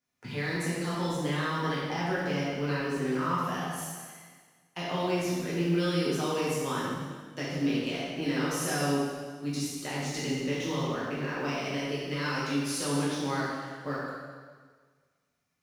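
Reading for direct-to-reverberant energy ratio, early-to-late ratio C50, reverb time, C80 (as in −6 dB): −9.0 dB, −2.0 dB, 1.6 s, 0.5 dB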